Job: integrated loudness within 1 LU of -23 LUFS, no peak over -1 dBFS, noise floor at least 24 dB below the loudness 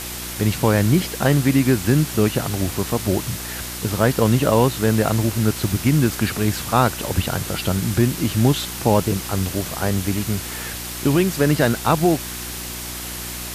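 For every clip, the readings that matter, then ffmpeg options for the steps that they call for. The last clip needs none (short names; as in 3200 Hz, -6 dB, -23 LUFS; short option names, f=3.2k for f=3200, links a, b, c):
hum 60 Hz; harmonics up to 360 Hz; hum level -35 dBFS; noise floor -31 dBFS; noise floor target -45 dBFS; loudness -20.5 LUFS; peak -3.5 dBFS; loudness target -23.0 LUFS
-> -af "bandreject=f=60:t=h:w=4,bandreject=f=120:t=h:w=4,bandreject=f=180:t=h:w=4,bandreject=f=240:t=h:w=4,bandreject=f=300:t=h:w=4,bandreject=f=360:t=h:w=4"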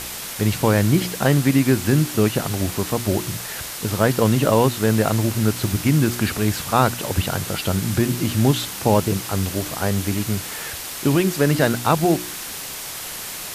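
hum none; noise floor -32 dBFS; noise floor target -45 dBFS
-> -af "afftdn=nr=13:nf=-32"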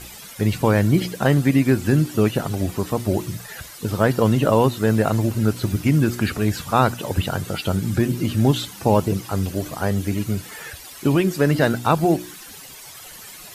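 noise floor -40 dBFS; noise floor target -45 dBFS
-> -af "afftdn=nr=6:nf=-40"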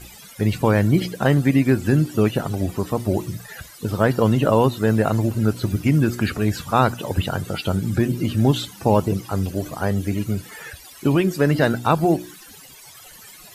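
noise floor -44 dBFS; noise floor target -45 dBFS
-> -af "afftdn=nr=6:nf=-44"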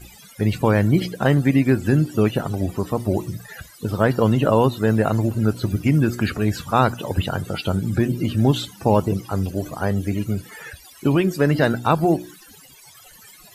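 noise floor -47 dBFS; loudness -20.5 LUFS; peak -2.5 dBFS; loudness target -23.0 LUFS
-> -af "volume=-2.5dB"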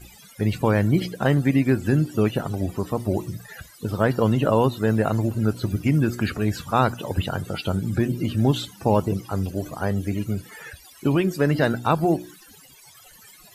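loudness -23.0 LUFS; peak -5.0 dBFS; noise floor -50 dBFS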